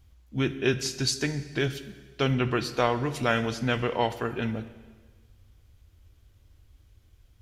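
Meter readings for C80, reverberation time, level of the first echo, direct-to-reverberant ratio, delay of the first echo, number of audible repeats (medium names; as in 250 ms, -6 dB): 15.0 dB, 1.5 s, no echo, 12.0 dB, no echo, no echo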